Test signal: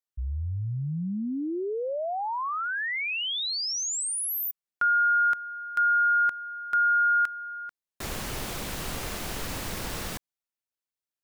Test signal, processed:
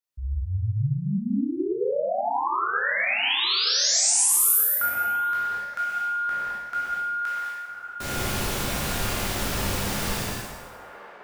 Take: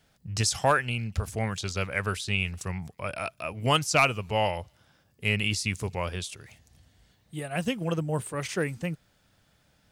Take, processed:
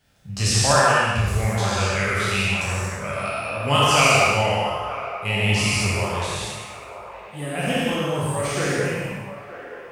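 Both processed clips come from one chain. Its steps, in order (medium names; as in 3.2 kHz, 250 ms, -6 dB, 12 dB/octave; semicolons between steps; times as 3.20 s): spectral sustain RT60 1.14 s; feedback echo behind a band-pass 922 ms, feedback 53%, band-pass 890 Hz, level -11 dB; gated-style reverb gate 260 ms flat, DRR -5 dB; trim -2.5 dB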